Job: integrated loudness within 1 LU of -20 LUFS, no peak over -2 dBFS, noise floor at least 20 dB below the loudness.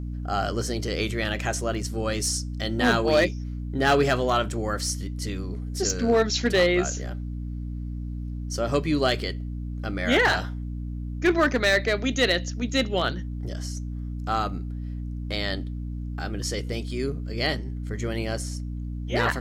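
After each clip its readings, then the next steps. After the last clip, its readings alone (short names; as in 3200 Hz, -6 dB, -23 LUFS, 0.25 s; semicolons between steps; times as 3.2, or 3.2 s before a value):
clipped 0.3%; flat tops at -13.5 dBFS; hum 60 Hz; harmonics up to 300 Hz; hum level -29 dBFS; loudness -26.0 LUFS; peak -13.5 dBFS; loudness target -20.0 LUFS
-> clip repair -13.5 dBFS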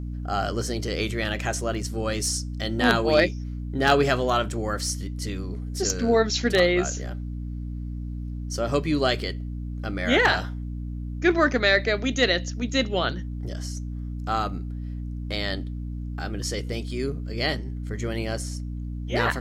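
clipped 0.0%; hum 60 Hz; harmonics up to 300 Hz; hum level -29 dBFS
-> de-hum 60 Hz, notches 5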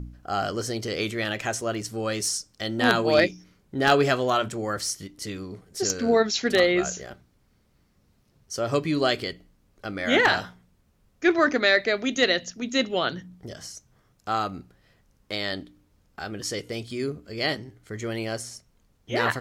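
hum none; loudness -25.0 LUFS; peak -4.0 dBFS; loudness target -20.0 LUFS
-> gain +5 dB; limiter -2 dBFS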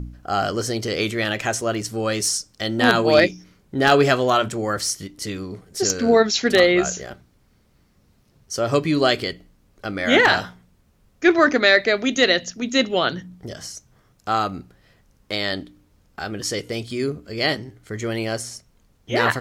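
loudness -20.5 LUFS; peak -2.0 dBFS; noise floor -60 dBFS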